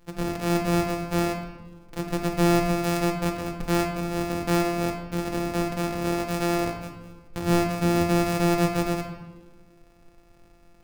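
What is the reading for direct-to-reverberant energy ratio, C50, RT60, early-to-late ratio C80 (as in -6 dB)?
2.5 dB, 5.5 dB, 1.4 s, 7.5 dB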